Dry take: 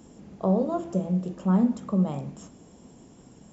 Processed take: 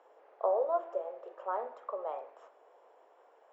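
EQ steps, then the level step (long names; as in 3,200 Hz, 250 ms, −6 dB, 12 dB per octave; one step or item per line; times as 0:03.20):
Butterworth high-pass 490 Hz 36 dB per octave
flat-topped band-pass 710 Hz, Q 0.52
0.0 dB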